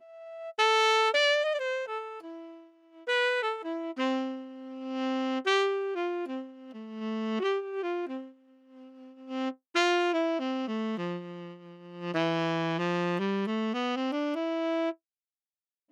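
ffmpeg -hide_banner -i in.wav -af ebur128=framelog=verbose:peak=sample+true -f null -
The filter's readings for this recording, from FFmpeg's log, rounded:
Integrated loudness:
  I:         -29.4 LUFS
  Threshold: -40.4 LUFS
Loudness range:
  LRA:         5.2 LU
  Threshold: -51.1 LUFS
  LRA low:   -33.3 LUFS
  LRA high:  -28.1 LUFS
Sample peak:
  Peak:      -15.2 dBFS
True peak:
  Peak:      -15.2 dBFS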